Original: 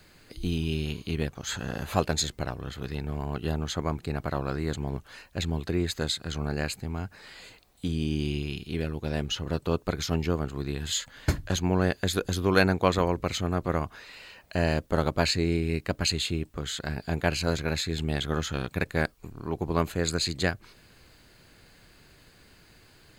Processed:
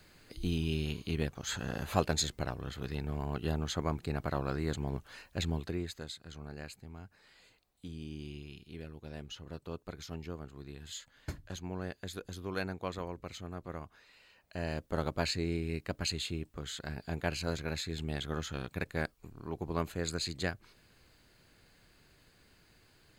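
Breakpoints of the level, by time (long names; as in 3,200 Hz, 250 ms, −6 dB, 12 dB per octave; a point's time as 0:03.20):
0:05.51 −4 dB
0:06.06 −15 dB
0:14.28 −15 dB
0:15.00 −8 dB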